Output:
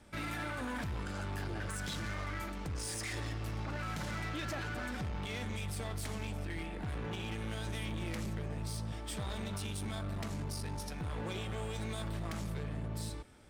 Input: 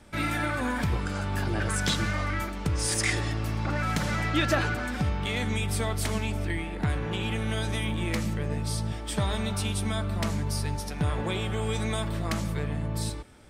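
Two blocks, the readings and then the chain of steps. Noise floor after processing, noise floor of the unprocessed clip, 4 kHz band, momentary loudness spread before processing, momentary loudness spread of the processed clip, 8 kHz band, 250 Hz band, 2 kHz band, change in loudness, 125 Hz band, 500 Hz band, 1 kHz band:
-42 dBFS, -35 dBFS, -11.0 dB, 5 LU, 2 LU, -11.0 dB, -10.5 dB, -11.0 dB, -10.5 dB, -10.0 dB, -10.5 dB, -10.0 dB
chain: peak limiter -22 dBFS, peak gain reduction 7.5 dB; one-sided clip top -32.5 dBFS, bottom -25.5 dBFS; trim -6 dB

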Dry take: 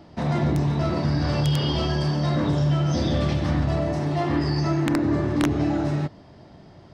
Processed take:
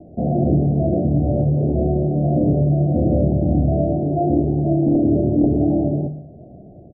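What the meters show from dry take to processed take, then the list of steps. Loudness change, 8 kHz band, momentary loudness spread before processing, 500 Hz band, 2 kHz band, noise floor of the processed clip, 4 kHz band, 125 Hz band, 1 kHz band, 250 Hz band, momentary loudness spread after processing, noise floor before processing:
+5.0 dB, under -35 dB, 3 LU, +6.5 dB, under -40 dB, -42 dBFS, under -40 dB, +4.0 dB, +0.5 dB, +6.0 dB, 3 LU, -48 dBFS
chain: steep low-pass 730 Hz 96 dB/octave; hum notches 50/100/150 Hz; on a send: feedback delay 60 ms, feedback 55%, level -14 dB; on the sum: trim +6.5 dB

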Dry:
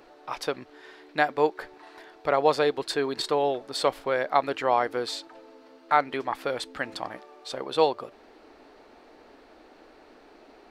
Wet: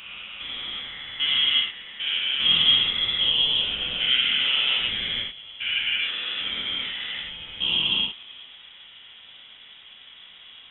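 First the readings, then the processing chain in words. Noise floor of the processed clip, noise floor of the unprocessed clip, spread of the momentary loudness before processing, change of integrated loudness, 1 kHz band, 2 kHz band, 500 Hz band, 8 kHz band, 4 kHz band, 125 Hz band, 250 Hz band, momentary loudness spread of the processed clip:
-48 dBFS, -54 dBFS, 14 LU, +5.5 dB, -16.0 dB, +5.5 dB, -22.0 dB, under -35 dB, +18.5 dB, -0.5 dB, -8.5 dB, 14 LU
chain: spectrogram pixelated in time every 400 ms; gated-style reverb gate 130 ms flat, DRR -3.5 dB; frequency inversion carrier 3.7 kHz; trim +2.5 dB

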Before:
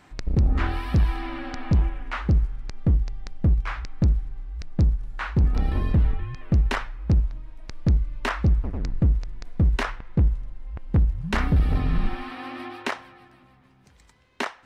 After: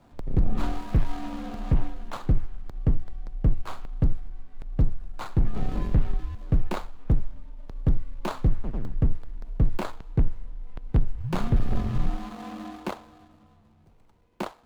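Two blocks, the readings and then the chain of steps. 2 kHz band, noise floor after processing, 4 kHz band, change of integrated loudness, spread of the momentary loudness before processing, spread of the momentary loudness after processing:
-11.5 dB, -58 dBFS, -7.5 dB, -4.5 dB, 11 LU, 14 LU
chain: median filter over 25 samples; frequency shift -42 Hz

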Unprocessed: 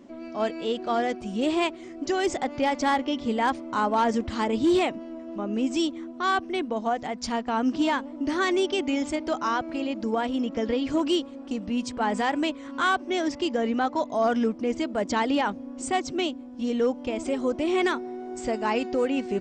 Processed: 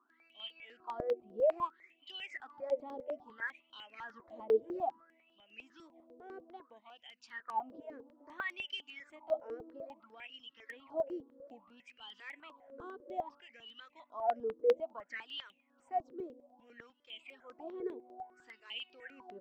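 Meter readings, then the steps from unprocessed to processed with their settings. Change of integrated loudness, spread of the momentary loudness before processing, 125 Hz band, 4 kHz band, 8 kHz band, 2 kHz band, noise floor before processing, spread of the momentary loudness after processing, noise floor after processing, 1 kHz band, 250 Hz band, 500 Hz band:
-13.0 dB, 6 LU, under -20 dB, -14.0 dB, under -30 dB, -15.0 dB, -41 dBFS, 22 LU, -73 dBFS, -15.5 dB, -26.5 dB, -10.5 dB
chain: wah-wah 0.6 Hz 440–3100 Hz, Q 17; stepped phaser 10 Hz 560–7100 Hz; trim +5 dB

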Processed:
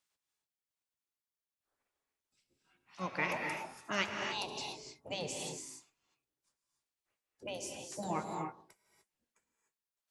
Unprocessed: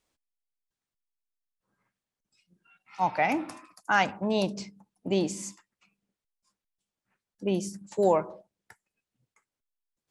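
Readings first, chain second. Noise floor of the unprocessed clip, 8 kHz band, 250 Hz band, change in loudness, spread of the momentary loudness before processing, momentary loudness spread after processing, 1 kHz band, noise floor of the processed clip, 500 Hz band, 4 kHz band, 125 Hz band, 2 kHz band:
under -85 dBFS, -2.5 dB, -13.5 dB, -11.0 dB, 17 LU, 11 LU, -11.0 dB, under -85 dBFS, -13.5 dB, -1.5 dB, -10.0 dB, -6.5 dB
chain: spectral gate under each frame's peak -10 dB weak; gated-style reverb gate 320 ms rising, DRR 3 dB; trim -3.5 dB

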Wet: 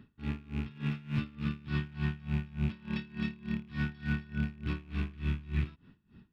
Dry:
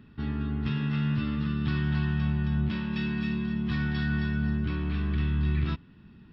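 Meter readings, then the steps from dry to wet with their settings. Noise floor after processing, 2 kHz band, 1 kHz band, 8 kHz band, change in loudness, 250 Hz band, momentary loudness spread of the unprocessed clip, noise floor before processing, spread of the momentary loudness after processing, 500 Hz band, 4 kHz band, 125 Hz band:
-69 dBFS, -6.0 dB, -7.5 dB, no reading, -7.0 dB, -7.5 dB, 3 LU, -53 dBFS, 5 LU, -7.5 dB, -7.0 dB, -7.0 dB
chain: rattle on loud lows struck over -28 dBFS, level -31 dBFS; logarithmic tremolo 3.4 Hz, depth 23 dB; trim -1.5 dB

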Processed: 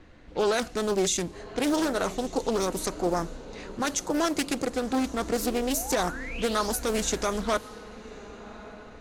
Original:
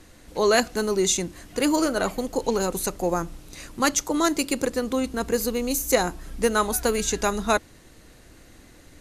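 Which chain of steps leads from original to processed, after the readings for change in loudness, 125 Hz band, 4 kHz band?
-4.0 dB, -2.5 dB, -3.0 dB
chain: peak limiter -14 dBFS, peak gain reduction 8 dB; painted sound rise, 5.42–6.73 s, 280–6100 Hz -38 dBFS; on a send: echo that smears into a reverb 1131 ms, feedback 44%, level -16 dB; on the sum: level-controlled noise filter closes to 2.7 kHz, open at -21 dBFS; loudspeaker Doppler distortion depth 0.39 ms; trim -1.5 dB

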